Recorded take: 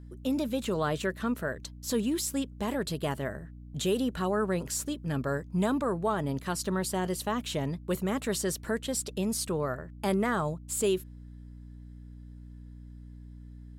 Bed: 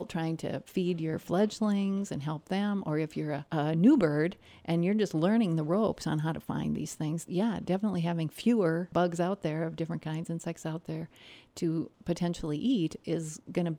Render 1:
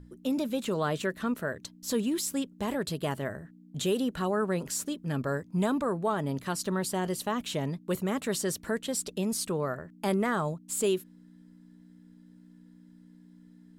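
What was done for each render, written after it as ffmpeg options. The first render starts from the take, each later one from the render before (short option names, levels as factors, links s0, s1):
-af "bandreject=f=60:t=h:w=6,bandreject=f=120:t=h:w=6"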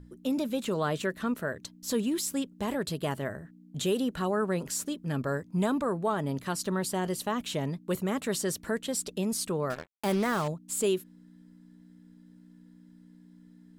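-filter_complex "[0:a]asettb=1/sr,asplit=3[s0][s1][s2];[s0]atrim=end=9.704[s3];[s1]atrim=start=9.7:end=10.48,asetpts=PTS-STARTPTS,afade=t=in:d=0.004:c=qsin,afade=t=out:st=0.776:d=0.004:c=qsin,acrusher=bits=5:mix=0:aa=0.5[s4];[s2]atrim=start=10.476[s5];[s3][s4]acrossfade=d=0.004:c1=hsin:c2=qsin[s6];[s6][s5]acrossfade=d=0.004:c1=qsin:c2=hsin"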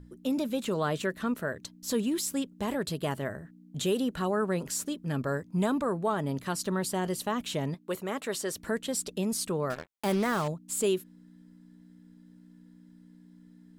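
-filter_complex "[0:a]asettb=1/sr,asplit=3[s0][s1][s2];[s0]atrim=end=7.744[s3];[s1]atrim=start=7.74:end=8.56,asetpts=PTS-STARTPTS,afade=t=in:d=0.004:c=qsin,afade=t=out:st=0.816:d=0.004:c=qsin,bass=f=250:g=-12,treble=f=4000:g=-3[s4];[s2]atrim=start=8.556[s5];[s3][s4]acrossfade=d=0.004:c1=hsin:c2=qsin[s6];[s6][s5]acrossfade=d=0.004:c1=qsin:c2=hsin"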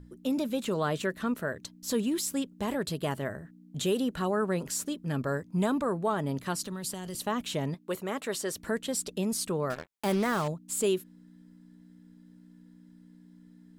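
-filter_complex "[0:a]asettb=1/sr,asplit=3[s0][s1][s2];[s0]atrim=end=6.634[s3];[s1]atrim=start=6.63:end=7.15,asetpts=PTS-STARTPTS,afade=t=in:d=0.004:c=qsin,afade=t=out:st=0.516:d=0.004:c=qsin,acrossover=split=140|3000[s4][s5][s6];[s5]acompressor=threshold=0.0141:ratio=6:attack=3.2:release=140:knee=2.83:detection=peak[s7];[s4][s7][s6]amix=inputs=3:normalize=0[s8];[s2]atrim=start=7.146[s9];[s3][s8]acrossfade=d=0.004:c1=hsin:c2=qsin[s10];[s10][s9]acrossfade=d=0.004:c1=qsin:c2=hsin"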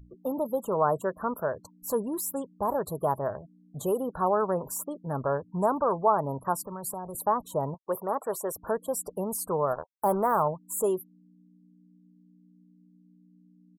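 -af "firequalizer=gain_entry='entry(110,0);entry(240,-6);entry(500,5);entry(960,11);entry(2100,-18);entry(12000,7)':delay=0.05:min_phase=1,afftfilt=real='re*gte(hypot(re,im),0.00631)':imag='im*gte(hypot(re,im),0.00631)':win_size=1024:overlap=0.75"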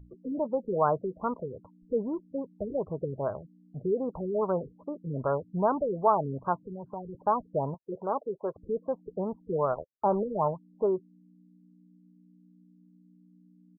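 -af "adynamicsmooth=sensitivity=1:basefreq=2800,afftfilt=real='re*lt(b*sr/1024,470*pow(1700/470,0.5+0.5*sin(2*PI*2.5*pts/sr)))':imag='im*lt(b*sr/1024,470*pow(1700/470,0.5+0.5*sin(2*PI*2.5*pts/sr)))':win_size=1024:overlap=0.75"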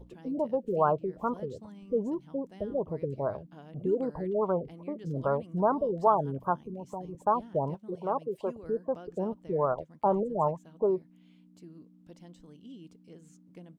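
-filter_complex "[1:a]volume=0.1[s0];[0:a][s0]amix=inputs=2:normalize=0"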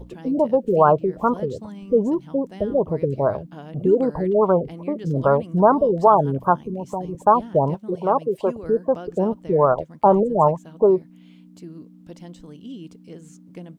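-af "volume=3.55,alimiter=limit=0.708:level=0:latency=1"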